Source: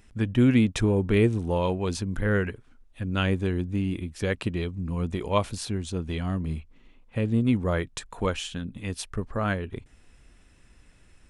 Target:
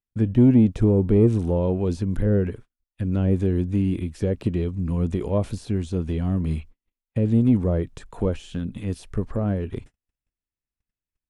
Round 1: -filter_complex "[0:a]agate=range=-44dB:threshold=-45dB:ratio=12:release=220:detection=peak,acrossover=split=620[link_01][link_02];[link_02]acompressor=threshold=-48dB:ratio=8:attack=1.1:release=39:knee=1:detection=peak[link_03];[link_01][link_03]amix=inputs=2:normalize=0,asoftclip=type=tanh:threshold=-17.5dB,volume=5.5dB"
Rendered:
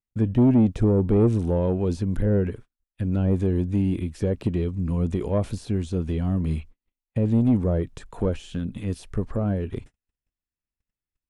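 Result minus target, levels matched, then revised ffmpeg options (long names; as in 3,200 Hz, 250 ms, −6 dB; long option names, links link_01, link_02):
soft clipping: distortion +11 dB
-filter_complex "[0:a]agate=range=-44dB:threshold=-45dB:ratio=12:release=220:detection=peak,acrossover=split=620[link_01][link_02];[link_02]acompressor=threshold=-48dB:ratio=8:attack=1.1:release=39:knee=1:detection=peak[link_03];[link_01][link_03]amix=inputs=2:normalize=0,asoftclip=type=tanh:threshold=-10.5dB,volume=5.5dB"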